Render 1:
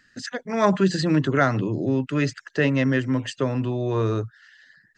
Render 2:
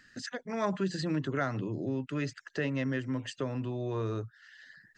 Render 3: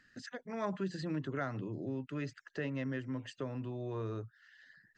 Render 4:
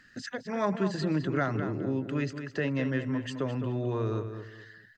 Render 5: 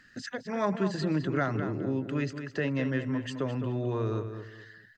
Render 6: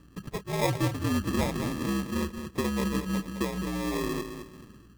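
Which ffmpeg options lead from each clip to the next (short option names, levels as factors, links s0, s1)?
-af "acompressor=threshold=0.00355:ratio=1.5"
-af "highshelf=f=4500:g=-7,volume=0.531"
-filter_complex "[0:a]asplit=2[s0][s1];[s1]adelay=211,lowpass=f=3800:p=1,volume=0.376,asplit=2[s2][s3];[s3]adelay=211,lowpass=f=3800:p=1,volume=0.29,asplit=2[s4][s5];[s5]adelay=211,lowpass=f=3800:p=1,volume=0.29[s6];[s0][s2][s4][s6]amix=inputs=4:normalize=0,volume=2.51"
-af anull
-af "highpass=f=160:t=q:w=0.5412,highpass=f=160:t=q:w=1.307,lowpass=f=2600:t=q:w=0.5176,lowpass=f=2600:t=q:w=0.7071,lowpass=f=2600:t=q:w=1.932,afreqshift=-66,aeval=exprs='val(0)+0.00126*(sin(2*PI*60*n/s)+sin(2*PI*2*60*n/s)/2+sin(2*PI*3*60*n/s)/3+sin(2*PI*4*60*n/s)/4+sin(2*PI*5*60*n/s)/5)':c=same,acrusher=samples=30:mix=1:aa=0.000001,volume=1.26"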